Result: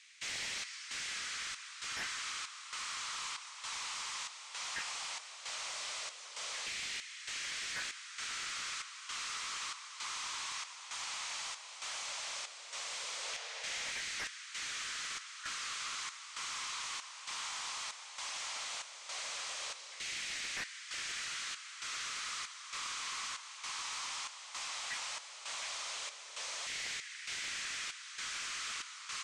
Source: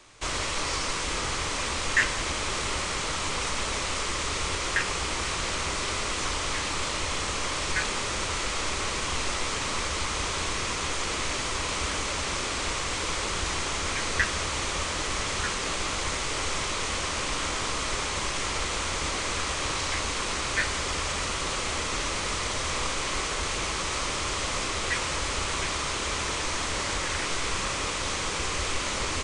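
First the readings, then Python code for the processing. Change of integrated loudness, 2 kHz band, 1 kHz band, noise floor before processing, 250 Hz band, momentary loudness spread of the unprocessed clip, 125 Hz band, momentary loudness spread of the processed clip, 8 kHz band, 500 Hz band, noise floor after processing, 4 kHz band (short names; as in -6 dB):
-11.5 dB, -12.0 dB, -15.0 dB, -31 dBFS, -28.0 dB, 2 LU, -32.5 dB, 4 LU, -10.5 dB, -24.0 dB, -51 dBFS, -10.0 dB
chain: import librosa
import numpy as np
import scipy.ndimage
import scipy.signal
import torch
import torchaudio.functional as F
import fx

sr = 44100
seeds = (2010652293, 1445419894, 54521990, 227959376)

y = F.preemphasis(torch.from_numpy(x), 0.97).numpy()
y = fx.rider(y, sr, range_db=10, speed_s=2.0)
y = 10.0 ** (-27.5 / 20.0) * np.tanh(y / 10.0 ** (-27.5 / 20.0))
y = fx.chopper(y, sr, hz=1.1, depth_pct=65, duty_pct=70)
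y = fx.filter_lfo_highpass(y, sr, shape='saw_down', hz=0.15, low_hz=530.0, high_hz=2000.0, q=2.4)
y = 10.0 ** (-31.0 / 20.0) * (np.abs((y / 10.0 ** (-31.0 / 20.0) + 3.0) % 4.0 - 2.0) - 1.0)
y = fx.spec_paint(y, sr, seeds[0], shape='noise', start_s=13.24, length_s=0.67, low_hz=440.0, high_hz=6900.0, level_db=-45.0)
y = fx.air_absorb(y, sr, metres=87.0)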